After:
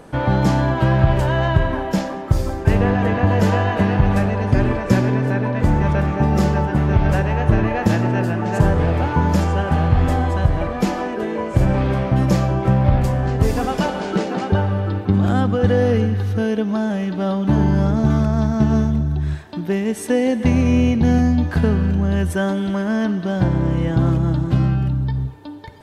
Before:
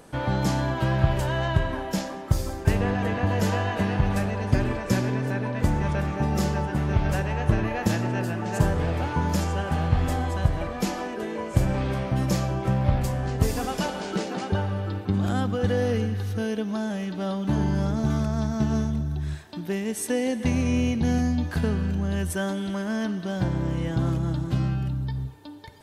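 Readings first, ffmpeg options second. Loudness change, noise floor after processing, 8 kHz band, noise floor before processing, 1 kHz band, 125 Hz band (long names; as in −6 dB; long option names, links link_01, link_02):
+7.5 dB, −28 dBFS, −0.5 dB, −35 dBFS, +7.5 dB, +7.5 dB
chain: -af "highshelf=frequency=3600:gain=-10.5,alimiter=level_in=9dB:limit=-1dB:release=50:level=0:latency=1,volume=-1dB"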